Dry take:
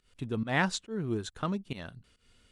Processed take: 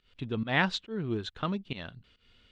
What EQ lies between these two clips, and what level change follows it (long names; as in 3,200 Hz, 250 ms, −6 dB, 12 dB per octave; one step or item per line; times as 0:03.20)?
low-pass with resonance 3,500 Hz, resonance Q 1.8
0.0 dB